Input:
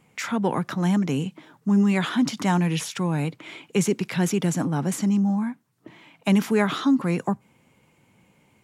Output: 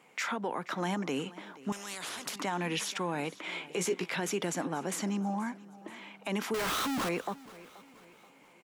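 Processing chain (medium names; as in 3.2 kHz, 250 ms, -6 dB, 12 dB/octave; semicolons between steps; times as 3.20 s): high-pass 390 Hz 12 dB/octave; treble shelf 5.7 kHz -6.5 dB; in parallel at +2 dB: compression, threshold -39 dBFS, peak gain reduction 19 dB; on the sum: peak limiter -20 dBFS, peak gain reduction 10.5 dB; 3.51–4.15 s: doubling 17 ms -5.5 dB; 6.54–7.09 s: Schmitt trigger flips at -48.5 dBFS; on a send: feedback delay 480 ms, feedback 45%, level -19.5 dB; 1.72–2.36 s: on the sum: spectrum-flattening compressor 4:1; trim -3.5 dB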